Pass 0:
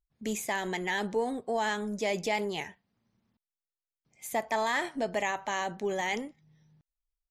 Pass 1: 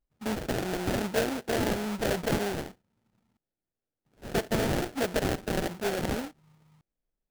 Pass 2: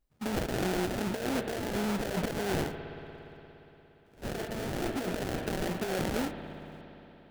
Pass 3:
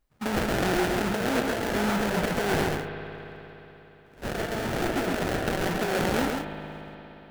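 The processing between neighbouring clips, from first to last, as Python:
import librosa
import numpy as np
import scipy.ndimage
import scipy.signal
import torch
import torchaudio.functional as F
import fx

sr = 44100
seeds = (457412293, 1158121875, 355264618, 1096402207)

y1 = fx.sample_hold(x, sr, seeds[0], rate_hz=1100.0, jitter_pct=20)
y1 = y1 * 10.0 ** (2.0 / 20.0)
y2 = fx.rev_spring(y1, sr, rt60_s=3.7, pass_ms=(58,), chirp_ms=40, drr_db=13.0)
y2 = fx.over_compress(y2, sr, threshold_db=-33.0, ratio=-1.0)
y2 = y2 * 10.0 ** (1.0 / 20.0)
y3 = fx.peak_eq(y2, sr, hz=1400.0, db=5.0, octaves=2.1)
y3 = y3 + 10.0 ** (-4.0 / 20.0) * np.pad(y3, (int(135 * sr / 1000.0), 0))[:len(y3)]
y3 = y3 * 10.0 ** (3.0 / 20.0)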